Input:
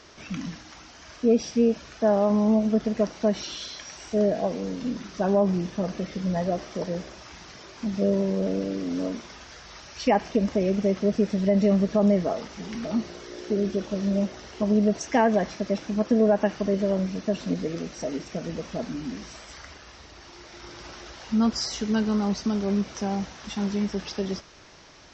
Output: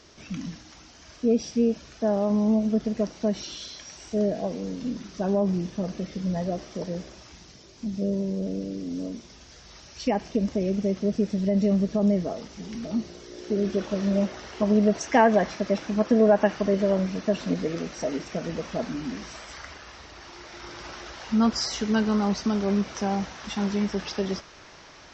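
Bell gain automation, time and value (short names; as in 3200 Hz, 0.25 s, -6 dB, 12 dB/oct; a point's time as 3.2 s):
bell 1300 Hz 2.7 oct
7.2 s -6 dB
7.62 s -14 dB
9.12 s -14 dB
9.73 s -7.5 dB
13.32 s -7.5 dB
13.79 s +4 dB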